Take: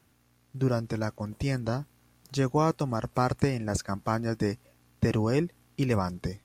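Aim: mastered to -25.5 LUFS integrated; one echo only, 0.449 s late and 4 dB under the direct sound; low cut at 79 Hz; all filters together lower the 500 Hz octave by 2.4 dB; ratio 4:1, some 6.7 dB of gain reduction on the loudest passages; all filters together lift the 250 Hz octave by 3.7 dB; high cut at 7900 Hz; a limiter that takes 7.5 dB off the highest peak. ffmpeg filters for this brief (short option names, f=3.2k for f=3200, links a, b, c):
-af "highpass=79,lowpass=7.9k,equalizer=f=250:t=o:g=6,equalizer=f=500:t=o:g=-5,acompressor=threshold=-26dB:ratio=4,alimiter=limit=-21.5dB:level=0:latency=1,aecho=1:1:449:0.631,volume=8dB"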